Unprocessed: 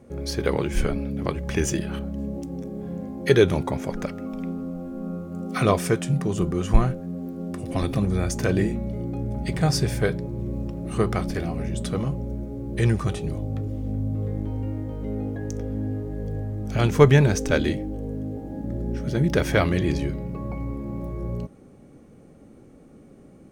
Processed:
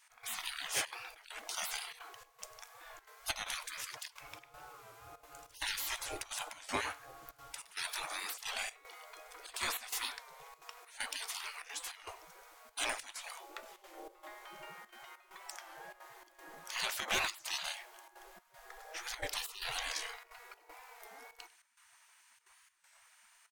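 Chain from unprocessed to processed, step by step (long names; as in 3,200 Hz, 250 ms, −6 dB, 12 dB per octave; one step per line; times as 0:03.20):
gate on every frequency bin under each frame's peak −30 dB weak
0:18.08–0:20.39: low-shelf EQ 320 Hz +9.5 dB
single-tap delay 99 ms −22 dB
gate pattern "x..xxxxxxxx.xx" 195 BPM −12 dB
soft clipping −32 dBFS, distortion −14 dB
wow of a warped record 33 1/3 rpm, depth 100 cents
level +6.5 dB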